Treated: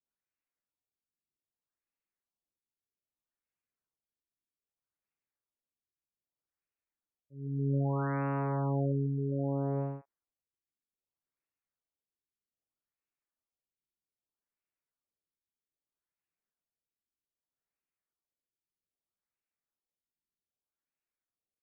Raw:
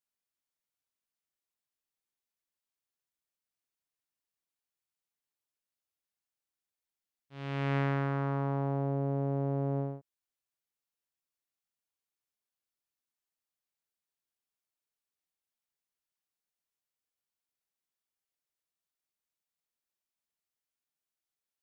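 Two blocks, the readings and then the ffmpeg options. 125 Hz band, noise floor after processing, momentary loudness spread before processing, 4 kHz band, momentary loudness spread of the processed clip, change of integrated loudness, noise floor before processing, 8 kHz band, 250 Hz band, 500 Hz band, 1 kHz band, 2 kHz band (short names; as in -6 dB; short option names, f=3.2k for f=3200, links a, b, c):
+0.5 dB, under -85 dBFS, 9 LU, under -25 dB, 8 LU, 0.0 dB, under -85 dBFS, n/a, +0.5 dB, -0.5 dB, -1.0 dB, -6.0 dB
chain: -filter_complex "[0:a]adynamicequalizer=threshold=0.00316:dfrequency=930:dqfactor=1.3:tfrequency=930:tqfactor=1.3:attack=5:release=100:ratio=0.375:range=2:mode=boostabove:tftype=bell,aphaser=in_gain=1:out_gain=1:delay=3.5:decay=0.2:speed=0.79:type=sinusoidal,acrossover=split=810[a][b];[b]adelay=40[c];[a][c]amix=inputs=2:normalize=0,afftfilt=real='re*lt(b*sr/1024,420*pow(2900/420,0.5+0.5*sin(2*PI*0.63*pts/sr)))':imag='im*lt(b*sr/1024,420*pow(2900/420,0.5+0.5*sin(2*PI*0.63*pts/sr)))':win_size=1024:overlap=0.75"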